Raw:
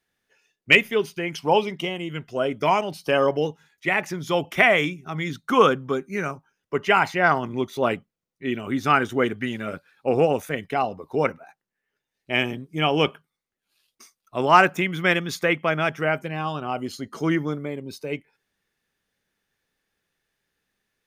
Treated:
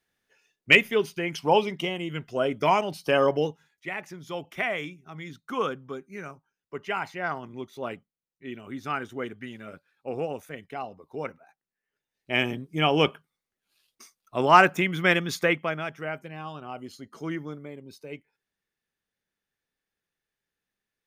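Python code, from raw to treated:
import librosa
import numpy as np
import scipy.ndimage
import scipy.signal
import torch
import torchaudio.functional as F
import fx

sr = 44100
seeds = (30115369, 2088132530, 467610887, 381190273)

y = fx.gain(x, sr, db=fx.line((3.41, -1.5), (3.9, -11.5), (11.26, -11.5), (12.51, -1.0), (15.46, -1.0), (15.86, -10.0)))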